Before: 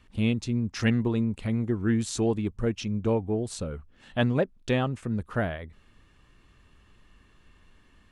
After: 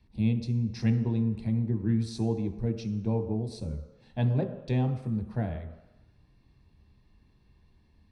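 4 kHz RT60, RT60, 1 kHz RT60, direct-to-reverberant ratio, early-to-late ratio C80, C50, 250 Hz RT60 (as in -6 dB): 1.0 s, 1.0 s, 1.1 s, 6.0 dB, 11.5 dB, 9.5 dB, 0.80 s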